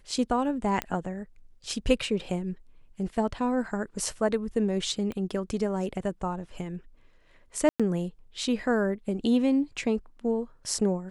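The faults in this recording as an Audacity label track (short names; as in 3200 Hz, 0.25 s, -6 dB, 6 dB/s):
0.820000	0.820000	pop -13 dBFS
5.120000	5.120000	pop -23 dBFS
7.690000	7.800000	gap 0.106 s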